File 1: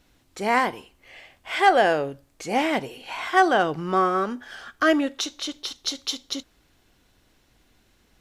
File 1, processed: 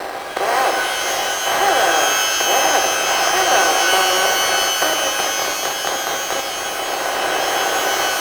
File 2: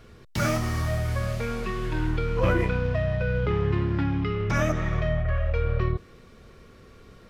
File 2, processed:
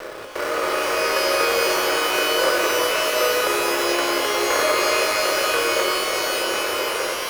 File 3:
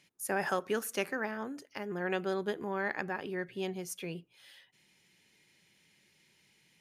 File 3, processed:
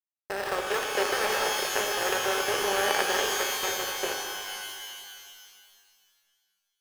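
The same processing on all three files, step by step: spectral levelling over time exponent 0.2; reverb removal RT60 0.7 s; steep high-pass 360 Hz 36 dB/octave; gate with hold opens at -19 dBFS; low-pass 3.8 kHz 12 dB/octave; level rider gain up to 7 dB; in parallel at -4 dB: sample-and-hold 13×; on the sum: crossover distortion -27 dBFS; wow and flutter 16 cents; pitch-shifted reverb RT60 2.1 s, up +12 st, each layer -2 dB, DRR 3 dB; trim -8 dB

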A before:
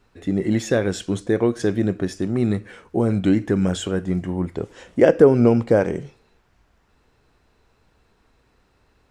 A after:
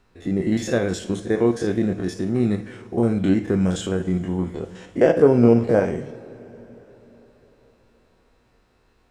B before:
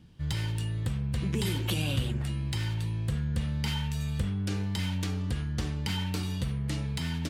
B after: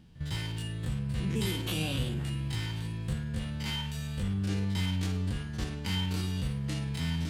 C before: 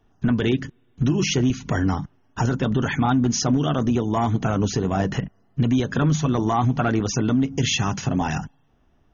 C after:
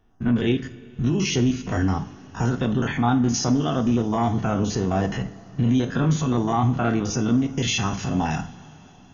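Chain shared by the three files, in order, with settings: spectrogram pixelated in time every 50 ms; two-slope reverb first 0.38 s, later 4.6 s, from -20 dB, DRR 7.5 dB

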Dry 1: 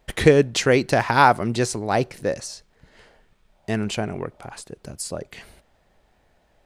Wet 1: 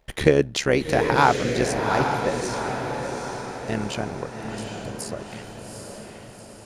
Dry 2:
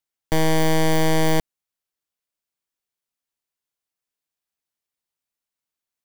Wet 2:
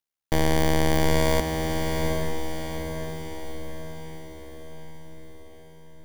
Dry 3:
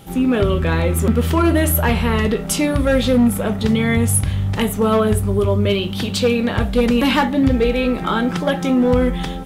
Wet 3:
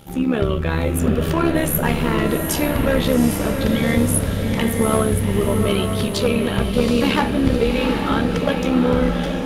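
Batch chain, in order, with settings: AM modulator 71 Hz, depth 55%; band-stop 7.9 kHz, Q 15; echo that smears into a reverb 796 ms, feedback 53%, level -4.5 dB

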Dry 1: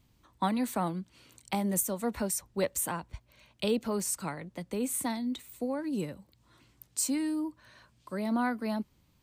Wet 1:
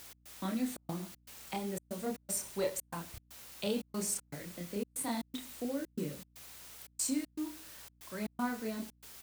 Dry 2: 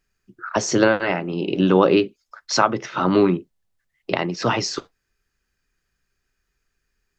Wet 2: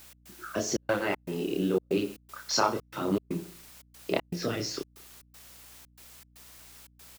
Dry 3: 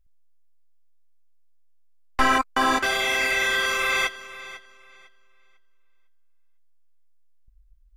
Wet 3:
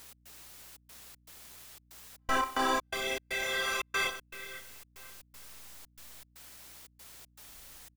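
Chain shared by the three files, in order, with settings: on a send: feedback delay 63 ms, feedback 43%, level -14.5 dB; on the sum: gate with hold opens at -48 dBFS; rotary cabinet horn 0.7 Hz; in parallel at -1 dB: compression, threshold -29 dBFS; on the sum: chorus voices 2, 0.48 Hz, delay 29 ms, depth 1.6 ms; dynamic bell 1.8 kHz, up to -4 dB, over -37 dBFS, Q 0.79; word length cut 8-bit, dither triangular; bass shelf 210 Hz -4 dB; trance gate "x.xxxx.x" 118 bpm -60 dB; hum 60 Hz, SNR 28 dB; trim -3.5 dB

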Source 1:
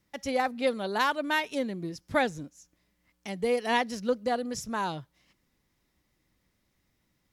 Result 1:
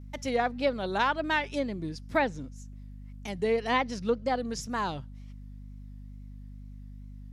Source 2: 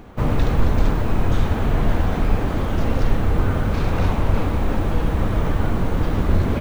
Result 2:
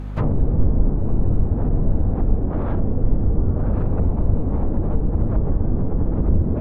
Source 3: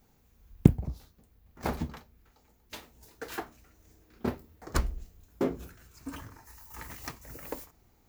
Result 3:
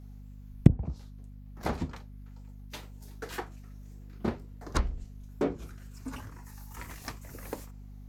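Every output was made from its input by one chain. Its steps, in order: wow and flutter 120 cents; low-pass that closes with the level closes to 450 Hz, closed at -14 dBFS; hum 50 Hz, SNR 12 dB

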